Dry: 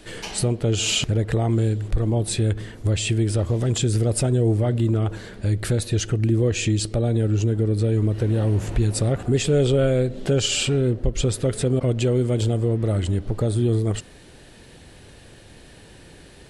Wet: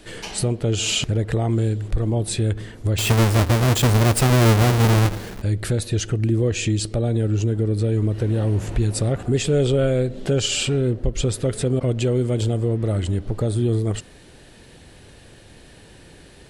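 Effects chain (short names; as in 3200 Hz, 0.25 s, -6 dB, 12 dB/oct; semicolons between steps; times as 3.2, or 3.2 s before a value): 2.98–5.42 half-waves squared off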